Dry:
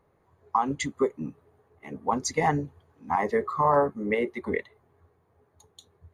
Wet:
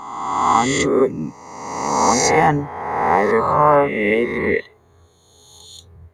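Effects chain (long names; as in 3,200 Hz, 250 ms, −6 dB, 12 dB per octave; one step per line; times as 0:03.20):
peak hold with a rise ahead of every peak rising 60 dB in 1.46 s
level +6.5 dB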